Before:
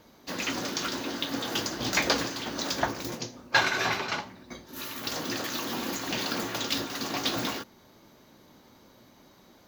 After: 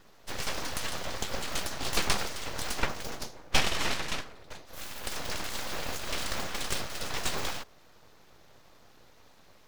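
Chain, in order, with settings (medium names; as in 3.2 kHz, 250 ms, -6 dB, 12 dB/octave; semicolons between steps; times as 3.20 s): treble shelf 7.9 kHz -6.5 dB; full-wave rectifier; trim +1 dB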